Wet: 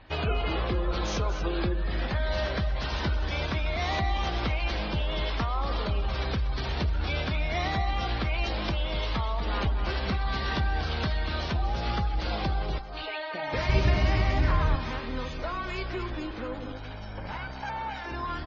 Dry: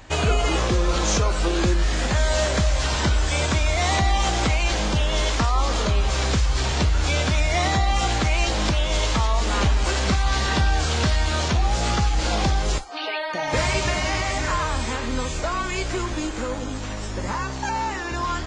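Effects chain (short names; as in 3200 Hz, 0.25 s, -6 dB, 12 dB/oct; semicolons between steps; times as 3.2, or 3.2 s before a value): 16.72–18.06 minimum comb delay 1.3 ms; LPF 5200 Hz 24 dB/oct; spectral gate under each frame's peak -30 dB strong; 13.69–14.76 low shelf 330 Hz +12 dB; echo 0.239 s -11 dB; on a send at -18 dB: reverb RT60 0.65 s, pre-delay 3 ms; on the sum: gain -7.5 dB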